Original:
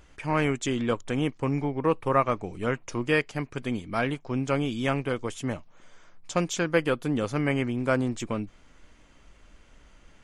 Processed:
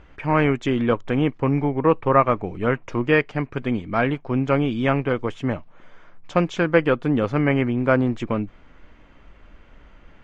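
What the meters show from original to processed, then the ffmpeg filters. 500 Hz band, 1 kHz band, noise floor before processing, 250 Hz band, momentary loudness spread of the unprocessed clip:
+6.5 dB, +6.5 dB, -56 dBFS, +6.5 dB, 8 LU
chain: -af "lowpass=2.5k,volume=6.5dB"

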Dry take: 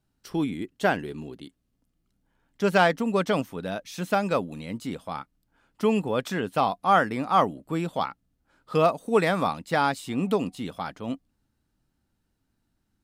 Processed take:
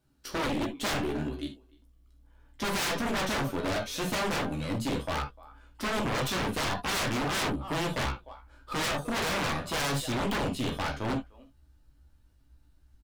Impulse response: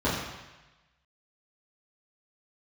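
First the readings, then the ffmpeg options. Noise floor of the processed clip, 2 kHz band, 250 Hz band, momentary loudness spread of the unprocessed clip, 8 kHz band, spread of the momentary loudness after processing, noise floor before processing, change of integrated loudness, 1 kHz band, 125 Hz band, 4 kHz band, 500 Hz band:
-62 dBFS, -2.0 dB, -4.0 dB, 14 LU, +8.5 dB, 7 LU, -76 dBFS, -4.5 dB, -7.5 dB, -1.0 dB, +4.5 dB, -7.5 dB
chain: -filter_complex "[0:a]asubboost=boost=8:cutoff=67,asplit=2[a][b];[b]adelay=300,highpass=300,lowpass=3.4k,asoftclip=type=hard:threshold=-18.5dB,volume=-23dB[c];[a][c]amix=inputs=2:normalize=0,aeval=exprs='0.376*(cos(1*acos(clip(val(0)/0.376,-1,1)))-cos(1*PI/2))+0.075*(cos(8*acos(clip(val(0)/0.376,-1,1)))-cos(8*PI/2))':c=same,alimiter=limit=-16dB:level=0:latency=1,asplit=2[d][e];[e]adelay=14,volume=-7dB[f];[d][f]amix=inputs=2:normalize=0,asplit=2[g][h];[1:a]atrim=start_sample=2205,atrim=end_sample=3528,highshelf=f=2.6k:g=11[i];[h][i]afir=irnorm=-1:irlink=0,volume=-15dB[j];[g][j]amix=inputs=2:normalize=0,aeval=exprs='0.0596*(abs(mod(val(0)/0.0596+3,4)-2)-1)':c=same"

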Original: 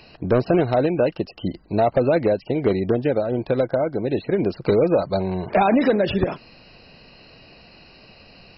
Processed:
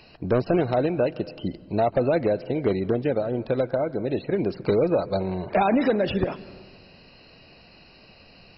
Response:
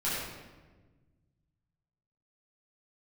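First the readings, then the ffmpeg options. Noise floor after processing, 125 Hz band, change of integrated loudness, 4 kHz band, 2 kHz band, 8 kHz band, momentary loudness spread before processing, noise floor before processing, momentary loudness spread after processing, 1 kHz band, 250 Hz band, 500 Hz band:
-52 dBFS, -3.5 dB, -3.5 dB, -3.5 dB, -3.5 dB, n/a, 7 LU, -49 dBFS, 6 LU, -3.5 dB, -3.5 dB, -3.5 dB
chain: -filter_complex "[0:a]asplit=2[a][b];[1:a]atrim=start_sample=2205,adelay=140[c];[b][c]afir=irnorm=-1:irlink=0,volume=-27dB[d];[a][d]amix=inputs=2:normalize=0,volume=-3.5dB"

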